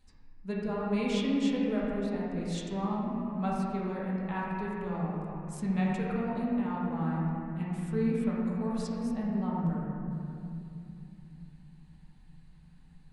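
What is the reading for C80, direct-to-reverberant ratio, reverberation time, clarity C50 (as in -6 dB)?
-0.5 dB, -6.0 dB, 2.7 s, -2.5 dB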